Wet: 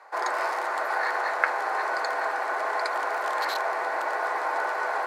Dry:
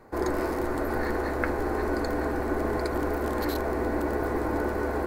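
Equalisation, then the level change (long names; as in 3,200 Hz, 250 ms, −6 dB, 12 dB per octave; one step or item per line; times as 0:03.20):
high-pass filter 720 Hz 24 dB per octave
high-frequency loss of the air 61 metres
+8.0 dB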